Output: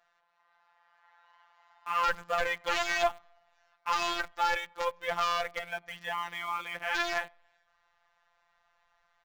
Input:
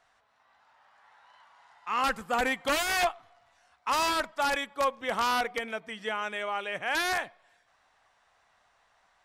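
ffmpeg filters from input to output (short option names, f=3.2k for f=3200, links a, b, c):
-filter_complex "[0:a]afftfilt=real='hypot(re,im)*cos(PI*b)':imag='0':win_size=1024:overlap=0.75,equalizer=f=1.4k:w=0.31:g=7.5,aresample=16000,volume=11dB,asoftclip=hard,volume=-11dB,aresample=44100,asubboost=boost=6:cutoff=87,asplit=2[a][b];[b]acrusher=bits=5:mix=0:aa=0.000001,volume=-9dB[c];[a][c]amix=inputs=2:normalize=0,aeval=exprs='0.473*(cos(1*acos(clip(val(0)/0.473,-1,1)))-cos(1*PI/2))+0.0266*(cos(3*acos(clip(val(0)/0.473,-1,1)))-cos(3*PI/2))':c=same,volume=-6dB"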